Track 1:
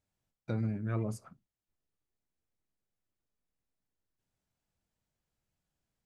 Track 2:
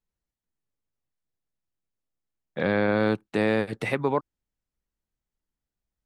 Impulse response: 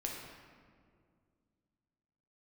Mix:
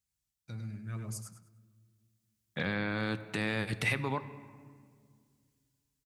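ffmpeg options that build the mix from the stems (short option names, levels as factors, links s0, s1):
-filter_complex "[0:a]bass=f=250:g=1,treble=f=4000:g=9,volume=0.531,asplit=3[s0][s1][s2];[s1]volume=0.141[s3];[s2]volume=0.447[s4];[1:a]alimiter=limit=0.106:level=0:latency=1:release=122,volume=0.75,asplit=2[s5][s6];[s6]volume=0.335[s7];[2:a]atrim=start_sample=2205[s8];[s3][s7]amix=inputs=2:normalize=0[s9];[s9][s8]afir=irnorm=-1:irlink=0[s10];[s4]aecho=0:1:102|204|306|408:1|0.25|0.0625|0.0156[s11];[s0][s5][s10][s11]amix=inputs=4:normalize=0,highpass=47,equalizer=f=470:t=o:w=2.6:g=-14.5,dynaudnorm=f=220:g=9:m=2.24"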